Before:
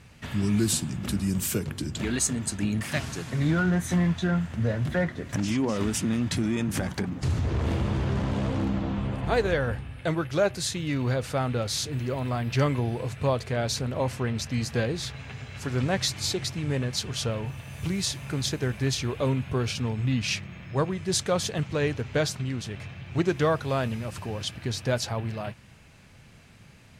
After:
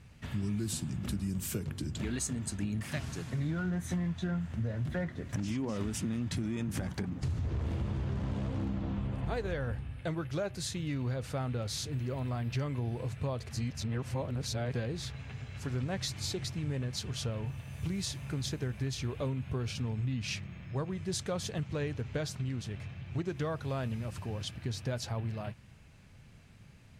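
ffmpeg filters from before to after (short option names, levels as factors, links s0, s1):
-filter_complex "[0:a]asplit=3[s0][s1][s2];[s0]atrim=end=13.492[s3];[s1]atrim=start=13.488:end=14.732,asetpts=PTS-STARTPTS,areverse[s4];[s2]atrim=start=14.728[s5];[s3][s4]acrossfade=d=0.004:c1=hsin:c2=hsin[s6];[s6][s5]acrossfade=d=0.004:c1=hsin:c2=hsin,lowshelf=f=190:g=7.5,acompressor=threshold=0.0794:ratio=6,volume=0.398"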